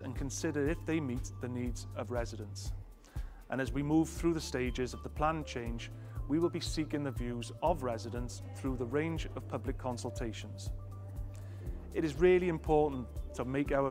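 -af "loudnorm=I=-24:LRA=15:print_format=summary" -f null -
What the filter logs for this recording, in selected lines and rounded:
Input Integrated:    -35.2 LUFS
Input True Peak:     -15.9 dBTP
Input LRA:             5.9 LU
Input Threshold:     -45.4 LUFS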